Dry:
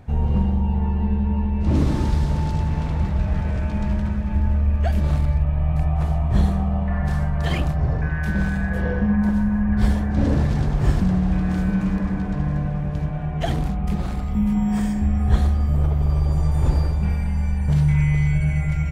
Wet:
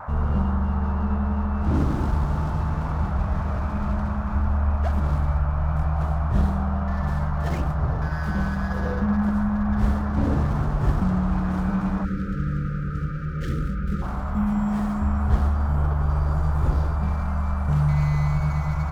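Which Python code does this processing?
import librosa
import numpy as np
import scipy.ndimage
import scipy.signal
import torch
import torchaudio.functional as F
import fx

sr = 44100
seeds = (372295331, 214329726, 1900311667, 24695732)

y = scipy.signal.medfilt(x, 15)
y = fx.dmg_noise_band(y, sr, seeds[0], low_hz=590.0, high_hz=1400.0, level_db=-34.0)
y = fx.spec_erase(y, sr, start_s=12.04, length_s=1.98, low_hz=580.0, high_hz=1200.0)
y = F.gain(torch.from_numpy(y), -3.0).numpy()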